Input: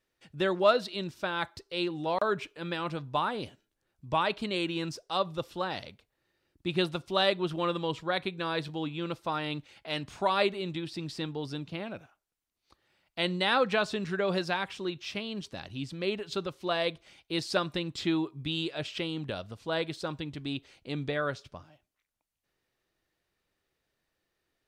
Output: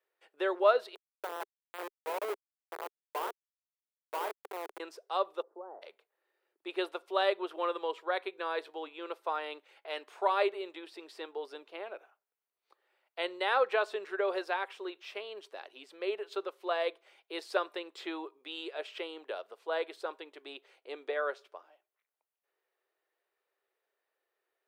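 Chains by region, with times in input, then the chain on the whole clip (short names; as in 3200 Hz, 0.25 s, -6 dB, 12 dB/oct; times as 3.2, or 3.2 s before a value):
0.95–4.8 bell 960 Hz +7.5 dB 0.3 oct + Schmitt trigger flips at -25 dBFS
5.42–5.82 compressor 10:1, threshold -33 dBFS + Gaussian blur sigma 9.6 samples
whole clip: elliptic high-pass 400 Hz, stop band 70 dB; bell 5800 Hz -12 dB 1.9 oct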